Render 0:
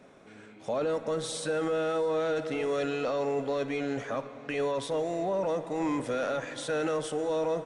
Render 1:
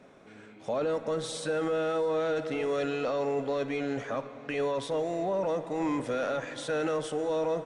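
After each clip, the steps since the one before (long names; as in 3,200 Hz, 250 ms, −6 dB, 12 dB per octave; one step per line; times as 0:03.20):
high-shelf EQ 8,900 Hz −6.5 dB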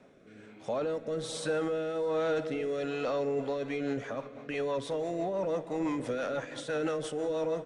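rotating-speaker cabinet horn 1.2 Hz, later 6 Hz, at 0:02.97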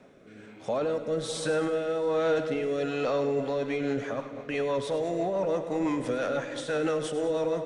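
echo with a time of its own for lows and highs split 610 Hz, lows 204 ms, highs 101 ms, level −12 dB
level +3.5 dB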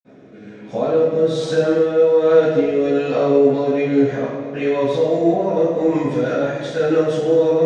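convolution reverb, pre-delay 46 ms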